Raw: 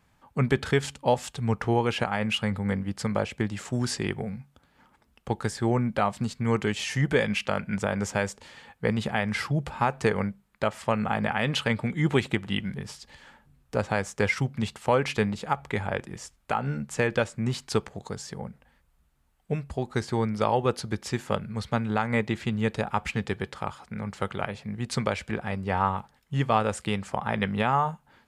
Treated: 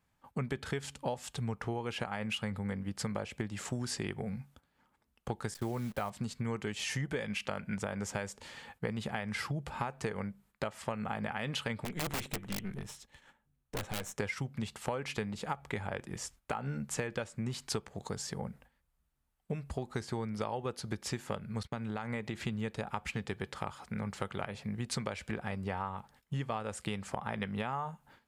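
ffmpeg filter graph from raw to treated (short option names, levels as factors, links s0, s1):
-filter_complex "[0:a]asettb=1/sr,asplit=3[s0][s1][s2];[s0]atrim=end=5.544[s3];[s1]atrim=start=5.54:end=6.1,asetpts=PTS-STARTPTS,afade=t=in:d=0.004:c=qsin,afade=t=out:st=0.556:d=0.004:c=qsin,agate=range=0.0224:threshold=0.02:ratio=3:release=100:detection=peak,asubboost=boost=9:cutoff=100,acrusher=bits=8:dc=4:mix=0:aa=0.000001[s4];[s2]atrim=start=6.096[s5];[s3][s4]acrossfade=d=0.004:c1=hsin:c2=qsin[s6];[s6][s5]acrossfade=d=0.004:c1=qsin:c2=hsin,asettb=1/sr,asplit=3[s7][s8][s9];[s7]atrim=end=11.844[s10];[s8]atrim=start=11.84:end=14.18,asetpts=PTS-STARTPTS,afade=t=in:d=0.004:c=qsin,afade=t=out:st=2.336:d=0.004:c=qsin,bandreject=f=4700:w=5.1,aeval=exprs='(tanh(31.6*val(0)+0.8)-tanh(0.8))/31.6':c=same,aeval=exprs='(mod(20*val(0)+1,2)-1)/20':c=same[s11];[s9]atrim=start=14.176[s12];[s10][s11]acrossfade=d=0.004:c1=hsin:c2=qsin[s13];[s13][s12]acrossfade=d=0.004:c1=qsin:c2=hsin,asettb=1/sr,asplit=3[s14][s15][s16];[s14]atrim=end=21.634[s17];[s15]atrim=start=21.63:end=22.41,asetpts=PTS-STARTPTS,afade=t=in:d=0.004:c=qsin,afade=t=out:st=0.776:d=0.004:c=qsin,agate=range=0.0398:threshold=0.00708:ratio=16:release=100:detection=peak,acompressor=threshold=0.0178:ratio=2:attack=3.2:release=140:knee=1:detection=peak[s18];[s16]atrim=start=22.406[s19];[s17][s18]acrossfade=d=0.004:c1=hsin:c2=qsin[s20];[s20][s19]acrossfade=d=0.004:c1=qsin:c2=hsin,agate=range=0.282:threshold=0.00178:ratio=16:detection=peak,acompressor=threshold=0.0251:ratio=6,highshelf=f=9100:g=5.5,volume=0.891"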